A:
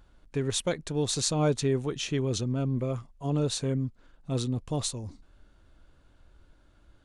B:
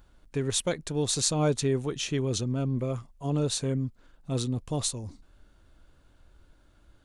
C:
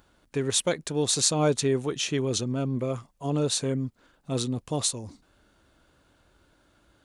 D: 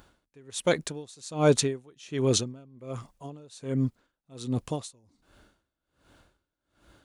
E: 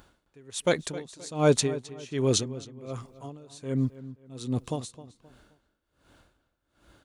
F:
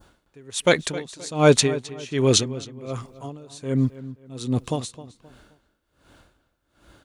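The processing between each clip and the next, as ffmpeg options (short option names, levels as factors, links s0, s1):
-af "highshelf=f=8600:g=7"
-af "highpass=f=190:p=1,volume=1.5"
-af "aeval=exprs='val(0)*pow(10,-30*(0.5-0.5*cos(2*PI*1.3*n/s))/20)':c=same,volume=1.78"
-filter_complex "[0:a]asplit=2[s0][s1];[s1]adelay=263,lowpass=f=3800:p=1,volume=0.168,asplit=2[s2][s3];[s3]adelay=263,lowpass=f=3800:p=1,volume=0.35,asplit=2[s4][s5];[s5]adelay=263,lowpass=f=3800:p=1,volume=0.35[s6];[s0][s2][s4][s6]amix=inputs=4:normalize=0"
-af "adynamicequalizer=threshold=0.00794:dfrequency=2400:dqfactor=0.71:tfrequency=2400:tqfactor=0.71:attack=5:release=100:ratio=0.375:range=2.5:mode=boostabove:tftype=bell,volume=1.88"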